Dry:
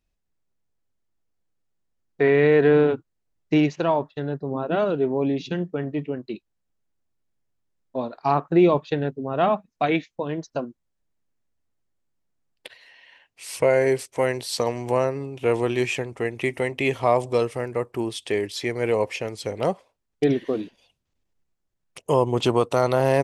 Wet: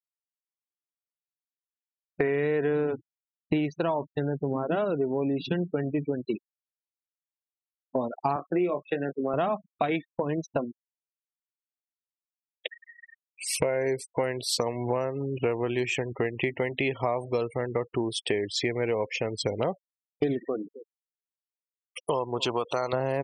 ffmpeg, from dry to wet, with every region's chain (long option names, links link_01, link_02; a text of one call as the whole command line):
ffmpeg -i in.wav -filter_complex "[0:a]asettb=1/sr,asplit=3[link_01][link_02][link_03];[link_01]atrim=end=8.364[link_04];[link_02]atrim=start=8.36:end=9.34,asetpts=PTS-STARTPTS,afade=type=in:duration=0.004:curve=qsin,afade=type=out:start_time=0.976:duration=0.004:curve=qsin,highpass=frequency=200:width=0.5412,highpass=frequency=200:width=1.3066,equalizer=frequency=250:width_type=q:width=4:gain=-7,equalizer=frequency=420:width_type=q:width=4:gain=-3,equalizer=frequency=920:width_type=q:width=4:gain=-8,lowpass=frequency=3200:width=0.5412,lowpass=frequency=3200:width=1.3066,asplit=2[link_05][link_06];[link_06]adelay=22,volume=-8dB[link_07];[link_05][link_07]amix=inputs=2:normalize=0,atrim=end_sample=43218[link_08];[link_03]atrim=start=9.336[link_09];[link_04][link_08]acrossfade=duration=0.004:curve1=hsin:curve2=qsin[link_10];[link_10][link_09]acrossfade=duration=0.004:curve1=qsin:curve2=hsin,asettb=1/sr,asplit=3[link_11][link_12][link_13];[link_11]atrim=end=20.484[link_14];[link_12]atrim=start=20.48:end=22.93,asetpts=PTS-STARTPTS,afade=type=in:duration=0.004:curve=qsin,afade=type=out:start_time=2.446:duration=0.004:curve=qsin,lowshelf=frequency=400:gain=-11.5,aecho=1:1:266|532:0.0891|0.0267,atrim=end_sample=108045[link_15];[link_13]atrim=start=22.926[link_16];[link_14][link_15]acrossfade=duration=0.004:curve1=hsin:curve2=qsin[link_17];[link_17][link_16]acrossfade=duration=0.004:curve1=qsin:curve2=hsin,afftfilt=real='re*gte(hypot(re,im),0.0178)':imag='im*gte(hypot(re,im),0.0178)':win_size=1024:overlap=0.75,acompressor=threshold=-33dB:ratio=6,volume=8dB" out.wav